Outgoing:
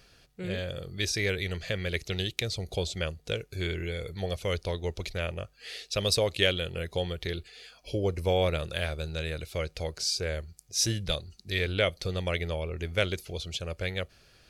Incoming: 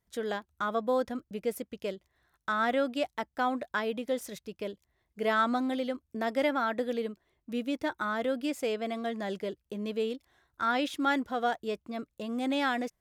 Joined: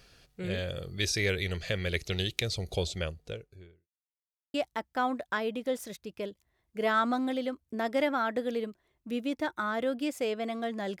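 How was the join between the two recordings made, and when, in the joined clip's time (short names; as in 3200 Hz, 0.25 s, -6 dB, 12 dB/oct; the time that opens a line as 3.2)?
outgoing
2.75–3.88 studio fade out
3.88–4.54 mute
4.54 switch to incoming from 2.96 s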